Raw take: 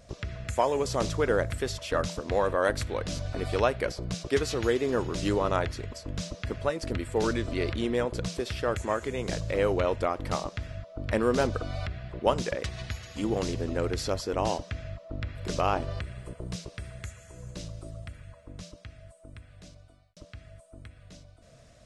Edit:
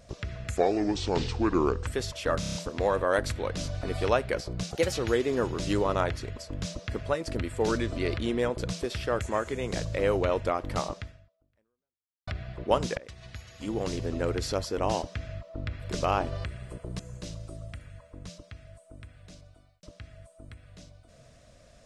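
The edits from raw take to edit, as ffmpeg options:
-filter_complex "[0:a]asplit=13[a][b][c][d][e][f][g][h][i][j][k][l][m];[a]atrim=end=0.574[n];[b]atrim=start=0.57:end=1.53,asetpts=PTS-STARTPTS,asetrate=32634,aresample=44100[o];[c]atrim=start=1.526:end=2.092[p];[d]atrim=start=2.058:end=2.092[q];[e]atrim=start=2.058:end=2.092[r];[f]atrim=start=2.058:end=2.092[s];[g]atrim=start=2.058:end=2.092[t];[h]atrim=start=2.058:end=4.224[u];[i]atrim=start=4.22:end=4.48,asetpts=PTS-STARTPTS,asetrate=52920,aresample=44100[v];[j]atrim=start=4.476:end=11.83,asetpts=PTS-STARTPTS,afade=t=out:st=6.054:d=1.3:c=exp[w];[k]atrim=start=11.83:end=12.53,asetpts=PTS-STARTPTS,afade=t=in:d=0.004:c=hsin,afade=t=out:st=0.696:d=0.004:c=hsin:silence=0.158489[x];[l]atrim=start=12.53:end=16.552,asetpts=PTS-STARTPTS,afade=t=in:d=1.17:silence=0.158489[y];[m]atrim=start=17.328[z];[n][o]acrossfade=d=0.004:c1=hsin:c2=hsin[aa];[aa][p]acrossfade=d=0.004:c1=hsin:c2=hsin[ab];[ab][q]acrossfade=d=0.004:c1=hsin:c2=hsin[ac];[ac][r]acrossfade=d=0.004:c1=hsin:c2=hsin[ad];[ad][s]acrossfade=d=0.004:c1=hsin:c2=hsin[ae];[ae][t]acrossfade=d=0.004:c1=hsin:c2=hsin[af];[af][u]acrossfade=d=0.004:c1=hsin:c2=hsin[ag];[ag][v]acrossfade=d=0.004:c1=hsin:c2=hsin[ah];[w][x][y]concat=n=3:v=0:a=1[ai];[ah][ai]acrossfade=d=0.004:c1=hsin:c2=hsin[aj];[aj][z]acrossfade=d=0.004:c1=hsin:c2=hsin"

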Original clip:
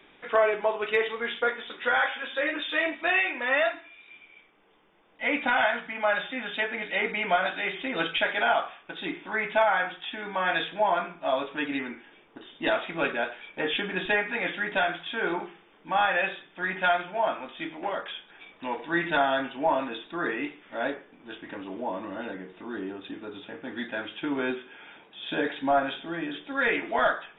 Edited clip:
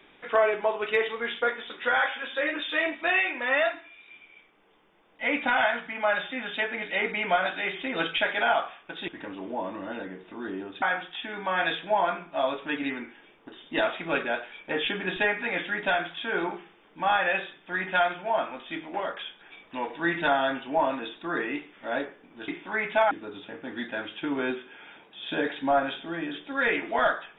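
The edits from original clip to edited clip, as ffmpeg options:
-filter_complex "[0:a]asplit=5[a][b][c][d][e];[a]atrim=end=9.082[f];[b]atrim=start=21.368:end=23.112[g];[c]atrim=start=9.708:end=21.372[h];[d]atrim=start=9.078:end=9.712[i];[e]atrim=start=23.108[j];[f][g]acrossfade=d=0.004:c1=hsin:c2=hsin[k];[k][h]acrossfade=d=0.004:c1=hsin:c2=hsin[l];[l][i]acrossfade=d=0.004:c1=hsin:c2=hsin[m];[m][j]acrossfade=d=0.004:c1=hsin:c2=hsin"

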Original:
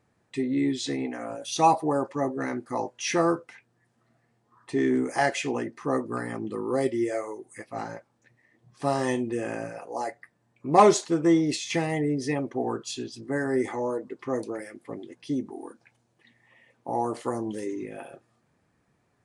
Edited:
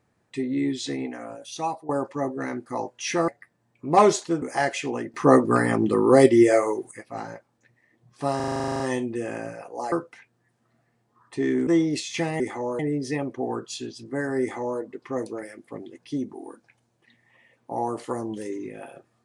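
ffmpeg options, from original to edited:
-filter_complex "[0:a]asplit=21[a][b][c][d][e][f][g][h][i][j][k][l][m][n][o][p][q][r][s][t][u];[a]atrim=end=1.89,asetpts=PTS-STARTPTS,afade=t=out:st=1.03:d=0.86:silence=0.158489[v];[b]atrim=start=1.89:end=3.282,asetpts=PTS-STARTPTS,afade=t=in:d=0.004:c=hsin:silence=0.158489[w];[c]atrim=start=10.088:end=11.232[x];[d]atrim=start=5.028:end=5.752[y];[e]atrim=start=5.748:end=7.522,asetpts=PTS-STARTPTS,volume=11dB[z];[f]atrim=start=7.518:end=9.012[aa];[g]atrim=start=8.968:end=9.012[ab];[h]atrim=start=8.968:end=9.012[ac];[i]atrim=start=8.968:end=9.012[ad];[j]atrim=start=8.968:end=9.012[ae];[k]atrim=start=8.968:end=9.012[af];[l]atrim=start=8.968:end=9.012[ag];[m]atrim=start=8.968:end=9.012[ah];[n]atrim=start=8.968:end=9.012[ai];[o]atrim=start=8.968:end=9.012[aj];[p]atrim=start=8.968:end=9.012[ak];[q]atrim=start=8.968:end=10.092[al];[r]atrim=start=3.278:end=5.032[am];[s]atrim=start=11.228:end=11.962[an];[t]atrim=start=13.578:end=13.972[ao];[u]atrim=start=11.958[ap];[v][w]concat=n=2:v=0:a=1[aq];[aq][x]acrossfade=d=0.004:c1=hsin:c2=hsin[ar];[ar][y]acrossfade=d=0.004:c1=hsin:c2=hsin[as];[as][z]acrossfade=d=0.004:c1=hsin:c2=hsin[at];[at][aa]acrossfade=d=0.004:c1=hsin:c2=hsin[au];[au][ab]acrossfade=d=0.004:c1=hsin:c2=hsin[av];[av][ac]acrossfade=d=0.004:c1=hsin:c2=hsin[aw];[aw][ad]acrossfade=d=0.004:c1=hsin:c2=hsin[ax];[ax][ae]acrossfade=d=0.004:c1=hsin:c2=hsin[ay];[ay][af]acrossfade=d=0.004:c1=hsin:c2=hsin[az];[az][ag]acrossfade=d=0.004:c1=hsin:c2=hsin[ba];[ba][ah]acrossfade=d=0.004:c1=hsin:c2=hsin[bb];[bb][ai]acrossfade=d=0.004:c1=hsin:c2=hsin[bc];[bc][aj]acrossfade=d=0.004:c1=hsin:c2=hsin[bd];[bd][ak]acrossfade=d=0.004:c1=hsin:c2=hsin[be];[be][al]acrossfade=d=0.004:c1=hsin:c2=hsin[bf];[bf][am]acrossfade=d=0.004:c1=hsin:c2=hsin[bg];[bg][an]acrossfade=d=0.004:c1=hsin:c2=hsin[bh];[bh][ao]acrossfade=d=0.004:c1=hsin:c2=hsin[bi];[bi][ap]acrossfade=d=0.004:c1=hsin:c2=hsin"

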